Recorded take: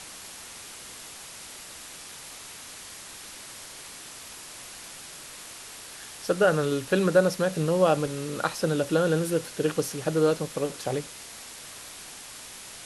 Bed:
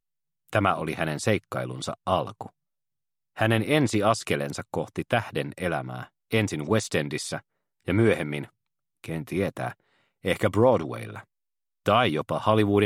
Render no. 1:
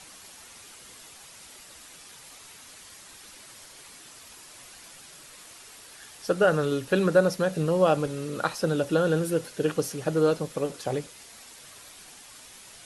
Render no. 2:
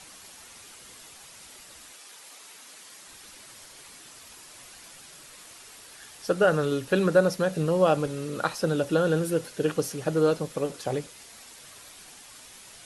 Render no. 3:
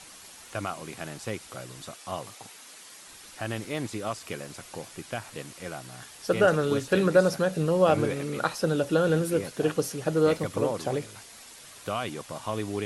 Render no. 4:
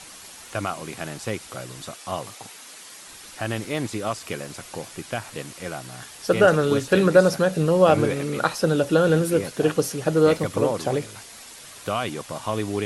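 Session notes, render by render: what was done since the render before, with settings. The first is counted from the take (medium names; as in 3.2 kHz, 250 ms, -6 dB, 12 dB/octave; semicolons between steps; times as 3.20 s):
noise reduction 7 dB, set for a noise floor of -43 dBFS
1.92–3.06 s: high-pass 390 Hz -> 170 Hz
add bed -10.5 dB
trim +5 dB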